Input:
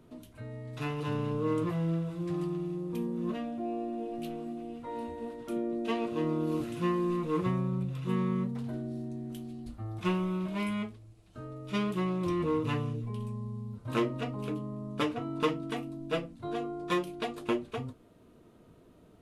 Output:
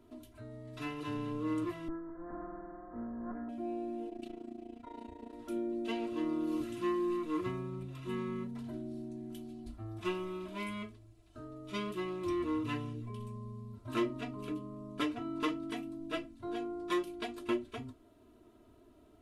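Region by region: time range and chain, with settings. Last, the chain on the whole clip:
1.88–3.49 s: comb filter that takes the minimum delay 4 ms + steep low-pass 1.8 kHz 72 dB/octave
4.09–5.33 s: low-pass 8.2 kHz + AM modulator 28 Hz, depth 75%
whole clip: comb 3 ms, depth 85%; dynamic bell 690 Hz, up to -5 dB, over -45 dBFS, Q 1.1; trim -5.5 dB

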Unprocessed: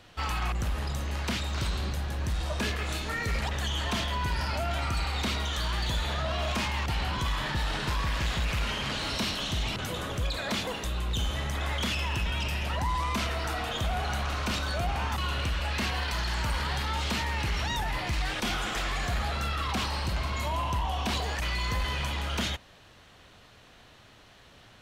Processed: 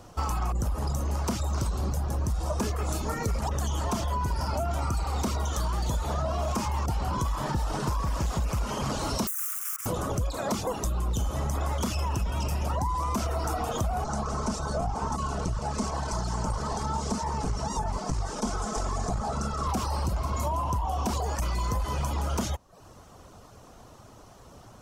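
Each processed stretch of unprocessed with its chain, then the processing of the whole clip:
9.27–9.86 s: self-modulated delay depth 0.93 ms + steep high-pass 1.1 kHz 96 dB/octave + static phaser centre 1.8 kHz, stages 4
14.04–19.67 s: comb filter that takes the minimum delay 4.6 ms + low-pass 8.6 kHz 24 dB/octave + peaking EQ 2.6 kHz -7 dB 1.2 oct
whole clip: reverb removal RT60 0.51 s; high-order bell 2.6 kHz -14.5 dB; compression, threshold -33 dBFS; trim +8 dB

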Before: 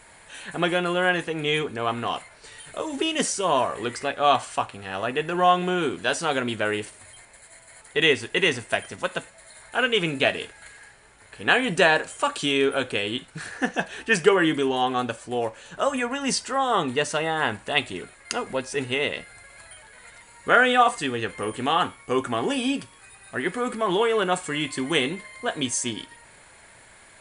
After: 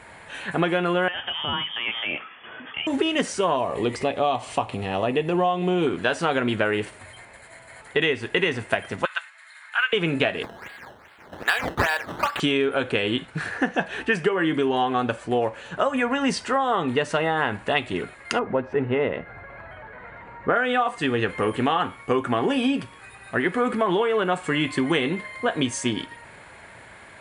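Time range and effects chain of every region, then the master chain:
1.08–2.87 s: frequency inversion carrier 3.4 kHz + high-pass 130 Hz 6 dB/octave + compression 2.5:1, threshold -31 dBFS
3.56–5.87 s: peaking EQ 1.5 kHz -14 dB 0.66 oct + upward compressor, threshold -28 dBFS
9.05–9.93 s: high-pass 1.2 kHz 24 dB/octave + treble shelf 7.9 kHz -10.5 dB
10.43–12.40 s: high-pass 970 Hz + decimation with a swept rate 13× 2.5 Hz
18.39–20.56 s: low-pass 1.4 kHz + upward compressor, threshold -40 dBFS
whole clip: high-pass 57 Hz; tone controls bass +1 dB, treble -13 dB; compression 12:1, threshold -25 dBFS; trim +7 dB

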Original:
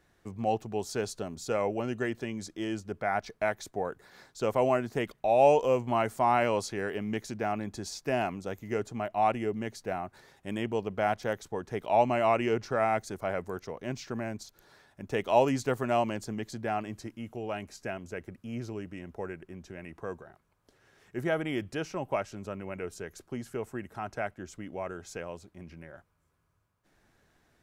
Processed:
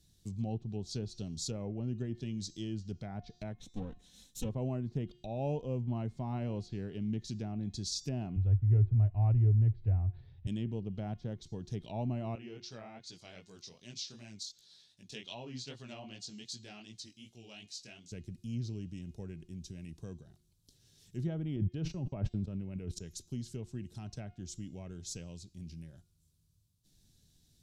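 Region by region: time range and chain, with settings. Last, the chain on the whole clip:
3.57–4.49 s: comb filter that takes the minimum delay 3.9 ms + peaking EQ 4.7 kHz -13.5 dB 0.27 oct
8.36–10.47 s: low-pass 2.4 kHz 24 dB/octave + resonant low shelf 140 Hz +11.5 dB, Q 3
12.35–18.12 s: low-pass 3.4 kHz + tilt EQ +4.5 dB/octave + chorus 2.6 Hz, delay 16.5 ms, depth 7.4 ms
21.56–23.03 s: gate -44 dBFS, range -46 dB + peaking EQ 5.7 kHz -11 dB 2 oct + decay stretcher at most 30 dB/s
whole clip: de-hum 356.8 Hz, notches 22; low-pass that closes with the level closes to 1.4 kHz, closed at -27.5 dBFS; FFT filter 160 Hz 0 dB, 560 Hz -20 dB, 1.3 kHz -26 dB, 2.1 kHz -20 dB, 3.8 kHz +3 dB; trim +3.5 dB

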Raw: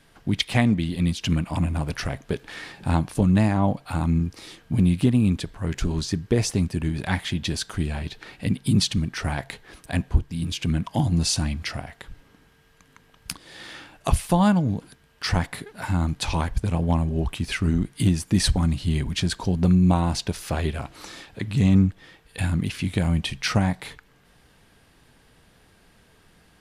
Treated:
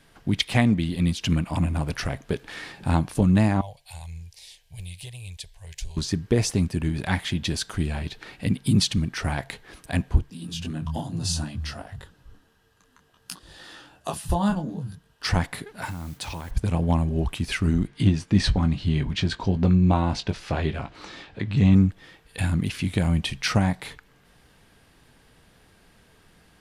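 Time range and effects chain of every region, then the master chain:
3.61–5.97 s: amplifier tone stack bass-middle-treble 10-0-10 + static phaser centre 540 Hz, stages 4
10.30–15.25 s: peaking EQ 2.2 kHz -13 dB 0.21 oct + bands offset in time highs, lows 170 ms, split 150 Hz + detune thickener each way 21 cents
15.85–16.51 s: high-pass 52 Hz + modulation noise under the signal 19 dB + compression 10:1, threshold -29 dBFS
17.87–21.74 s: low-pass 4.4 kHz + doubling 20 ms -9.5 dB
whole clip: none

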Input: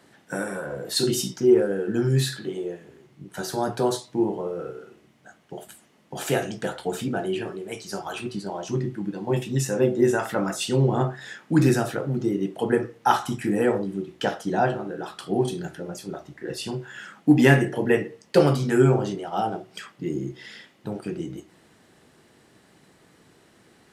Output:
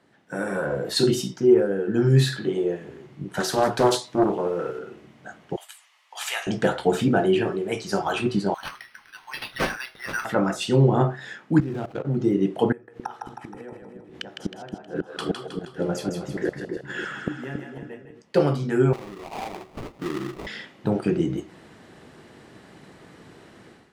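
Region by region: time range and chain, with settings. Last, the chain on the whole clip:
3.40–4.79 s: tilt EQ +2 dB/octave + loudspeaker Doppler distortion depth 0.55 ms
5.56–6.47 s: high-pass 1.1 kHz 24 dB/octave + peaking EQ 1.5 kHz -9.5 dB 0.41 oct
8.54–10.25 s: inverse Chebyshev high-pass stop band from 510 Hz, stop band 50 dB + careless resampling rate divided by 6×, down none, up hold
11.60–12.05 s: median filter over 25 samples + level held to a coarse grid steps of 15 dB
12.72–18.22 s: inverted gate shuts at -22 dBFS, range -28 dB + two-band feedback delay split 490 Hz, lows 275 ms, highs 158 ms, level -5 dB
18.93–20.47 s: high-pass 370 Hz 6 dB/octave + sample-rate reducer 1.6 kHz, jitter 20% + compression 2:1, threshold -38 dBFS
whole clip: low-pass 3.2 kHz 6 dB/octave; level rider gain up to 14.5 dB; trim -5.5 dB

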